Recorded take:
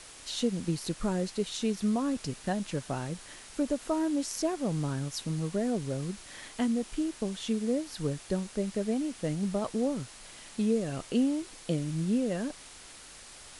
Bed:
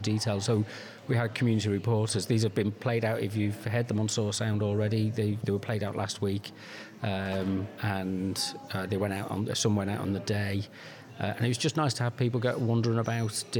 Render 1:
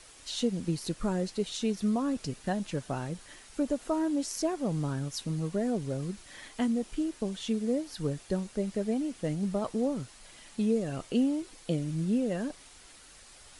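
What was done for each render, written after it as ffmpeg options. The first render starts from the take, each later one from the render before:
-af "afftdn=nr=6:nf=-50"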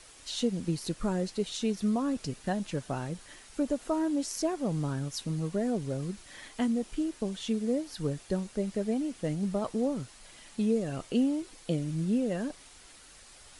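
-af anull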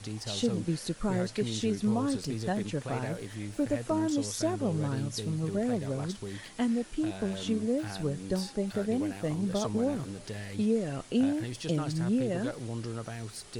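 -filter_complex "[1:a]volume=0.316[s0];[0:a][s0]amix=inputs=2:normalize=0"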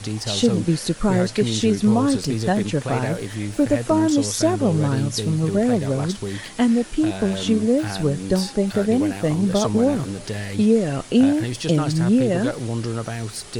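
-af "volume=3.55"

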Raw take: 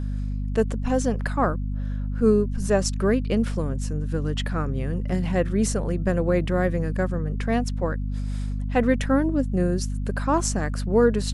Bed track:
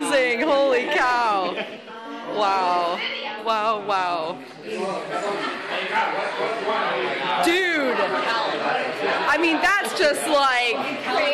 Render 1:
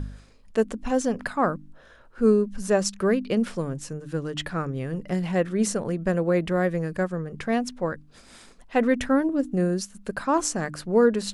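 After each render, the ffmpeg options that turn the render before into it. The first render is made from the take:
-af "bandreject=f=50:t=h:w=4,bandreject=f=100:t=h:w=4,bandreject=f=150:t=h:w=4,bandreject=f=200:t=h:w=4,bandreject=f=250:t=h:w=4,bandreject=f=300:t=h:w=4"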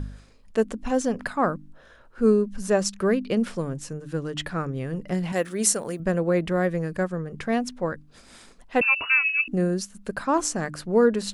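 -filter_complex "[0:a]asettb=1/sr,asplit=3[s0][s1][s2];[s0]atrim=end=5.324[s3];[s1]atrim=start=5.32:end=6,asetpts=PTS-STARTPTS,afade=t=in:d=0.004:c=qsin,afade=t=out:st=0.676:d=0.004:c=qsin,aemphasis=mode=production:type=bsi[s4];[s2]atrim=start=5.996[s5];[s3][s4]acrossfade=d=0.004:c1=hsin:c2=qsin[s6];[s6][s5]acrossfade=d=0.004:c1=qsin:c2=hsin,asettb=1/sr,asplit=3[s7][s8][s9];[s7]atrim=end=8.814[s10];[s8]atrim=start=8.81:end=9.48,asetpts=PTS-STARTPTS,afade=t=in:d=0.004:c=qsin,afade=t=out:st=0.666:d=0.004:c=qsin,lowpass=f=2500:t=q:w=0.5098,lowpass=f=2500:t=q:w=0.6013,lowpass=f=2500:t=q:w=0.9,lowpass=f=2500:t=q:w=2.563,afreqshift=-2900[s11];[s9]atrim=start=9.476[s12];[s10][s11]acrossfade=d=0.004:c1=hsin:c2=qsin[s13];[s13][s12]acrossfade=d=0.004:c1=qsin:c2=hsin"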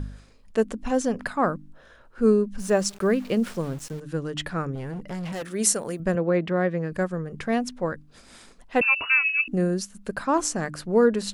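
-filter_complex "[0:a]asettb=1/sr,asplit=3[s0][s1][s2];[s0]atrim=end=2.594[s3];[s1]atrim=start=2.59:end=4,asetpts=PTS-STARTPTS,afade=t=in:d=0.004:c=qsin,afade=t=out:st=1.406:d=0.004:c=qsin,aeval=exprs='val(0)*gte(abs(val(0)),0.00891)':c=same[s4];[s2]atrim=start=3.996[s5];[s3][s4]acrossfade=d=0.004:c1=hsin:c2=qsin[s6];[s6][s5]acrossfade=d=0.004:c1=qsin:c2=hsin,asettb=1/sr,asplit=3[s7][s8][s9];[s7]atrim=end=4.754[s10];[s8]atrim=start=4.75:end=5.54,asetpts=PTS-STARTPTS,afade=t=in:d=0.004:c=qsin,afade=t=out:st=0.786:d=0.004:c=qsin,asoftclip=type=hard:threshold=0.0335[s11];[s9]atrim=start=5.536[s12];[s10][s11]acrossfade=d=0.004:c1=hsin:c2=qsin[s13];[s13][s12]acrossfade=d=0.004:c1=qsin:c2=hsin,asettb=1/sr,asplit=3[s14][s15][s16];[s14]atrim=end=6.154[s17];[s15]atrim=start=6.15:end=6.92,asetpts=PTS-STARTPTS,afade=t=in:d=0.004:c=qsin,afade=t=out:st=0.766:d=0.004:c=qsin,highpass=110,lowpass=4100[s18];[s16]atrim=start=6.916[s19];[s17][s18]acrossfade=d=0.004:c1=hsin:c2=qsin[s20];[s20][s19]acrossfade=d=0.004:c1=qsin:c2=hsin"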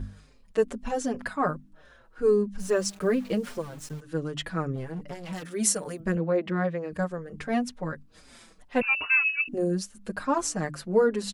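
-filter_complex "[0:a]asplit=2[s0][s1];[s1]adelay=5.4,afreqshift=-2.5[s2];[s0][s2]amix=inputs=2:normalize=1"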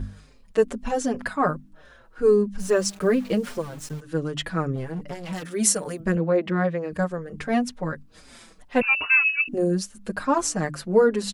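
-af "volume=1.58"

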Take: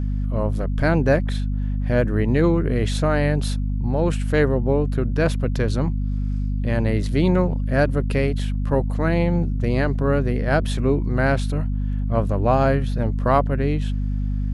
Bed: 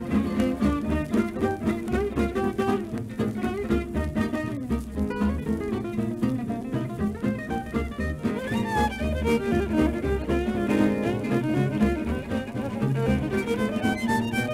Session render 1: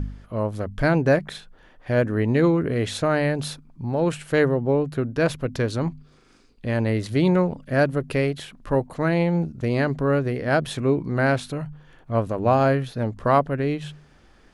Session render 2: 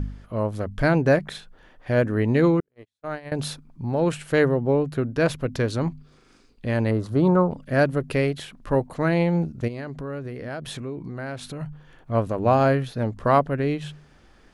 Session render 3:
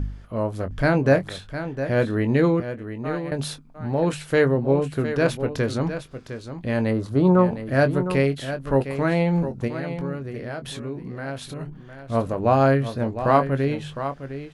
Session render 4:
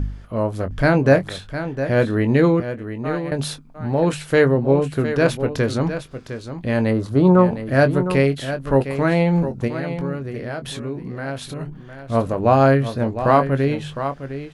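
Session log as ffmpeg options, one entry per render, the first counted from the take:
-af "bandreject=f=50:t=h:w=4,bandreject=f=100:t=h:w=4,bandreject=f=150:t=h:w=4,bandreject=f=200:t=h:w=4,bandreject=f=250:t=h:w=4"
-filter_complex "[0:a]asettb=1/sr,asplit=3[s0][s1][s2];[s0]atrim=end=2.604[s3];[s1]atrim=start=2.6:end=3.32,asetpts=PTS-STARTPTS,afade=t=in:d=0.004:c=qsin,afade=t=out:st=0.716:d=0.004:c=qsin,agate=range=0.00141:threshold=0.112:ratio=16:release=100:detection=peak[s4];[s2]atrim=start=3.316[s5];[s3][s4]acrossfade=d=0.004:c1=hsin:c2=qsin[s6];[s6][s5]acrossfade=d=0.004:c1=qsin:c2=hsin,asettb=1/sr,asplit=3[s7][s8][s9];[s7]atrim=end=6.914[s10];[s8]atrim=start=6.91:end=7.51,asetpts=PTS-STARTPTS,afade=t=in:d=0.004:c=qsin,afade=t=out:st=0.596:d=0.004:c=qsin,highshelf=f=1600:t=q:w=3:g=-9[s11];[s9]atrim=start=7.506[s12];[s10][s11]acrossfade=d=0.004:c1=hsin:c2=qsin[s13];[s13][s12]acrossfade=d=0.004:c1=qsin:c2=hsin,asplit=3[s14][s15][s16];[s14]afade=t=out:st=9.67:d=0.02[s17];[s15]acompressor=threshold=0.0282:ratio=4:attack=3.2:release=140:knee=1:detection=peak,afade=t=in:st=9.67:d=0.02,afade=t=out:st=11.6:d=0.02[s18];[s16]afade=t=in:st=11.6:d=0.02[s19];[s17][s18][s19]amix=inputs=3:normalize=0"
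-filter_complex "[0:a]asplit=2[s0][s1];[s1]adelay=22,volume=0.316[s2];[s0][s2]amix=inputs=2:normalize=0,aecho=1:1:708:0.299"
-af "volume=1.5,alimiter=limit=0.794:level=0:latency=1"

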